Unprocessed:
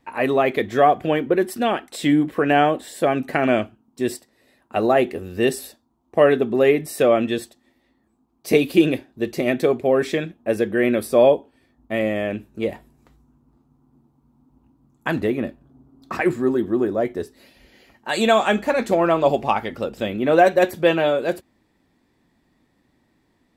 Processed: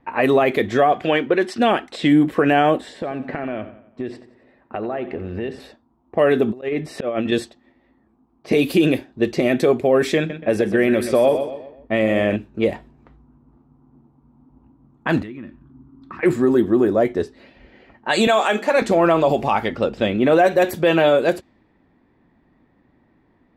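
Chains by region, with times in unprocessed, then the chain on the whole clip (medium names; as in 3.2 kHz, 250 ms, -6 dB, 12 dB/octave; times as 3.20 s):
0.92–1.58 s: low-pass 4.5 kHz + tilt EQ +2.5 dB/octave
2.78–5.60 s: compression 8:1, threshold -28 dBFS + low-pass 3.1 kHz 6 dB/octave + feedback delay 89 ms, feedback 49%, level -14 dB
6.48–7.32 s: slow attack 405 ms + compressor with a negative ratio -28 dBFS, ratio -0.5
10.17–12.36 s: compression 2:1, threshold -18 dBFS + feedback delay 126 ms, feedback 41%, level -10.5 dB
15.22–16.23 s: high-order bell 570 Hz -12.5 dB 1.1 oct + compression 4:1, threshold -39 dBFS
18.27–18.82 s: high-pass 320 Hz + hum notches 50/100/150/200/250/300/350/400/450 Hz
whole clip: level-controlled noise filter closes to 1.9 kHz, open at -16.5 dBFS; peak limiter -12.5 dBFS; trim +5.5 dB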